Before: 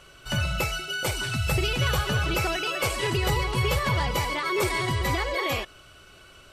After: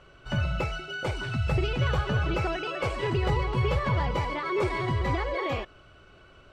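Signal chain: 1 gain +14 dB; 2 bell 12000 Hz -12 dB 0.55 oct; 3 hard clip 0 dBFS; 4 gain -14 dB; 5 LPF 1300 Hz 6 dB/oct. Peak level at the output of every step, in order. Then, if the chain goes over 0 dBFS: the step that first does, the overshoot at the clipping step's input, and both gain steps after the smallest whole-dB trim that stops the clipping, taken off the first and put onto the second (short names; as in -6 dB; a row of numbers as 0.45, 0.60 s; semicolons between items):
-2.5, -2.5, -2.5, -16.5, -17.0 dBFS; no overload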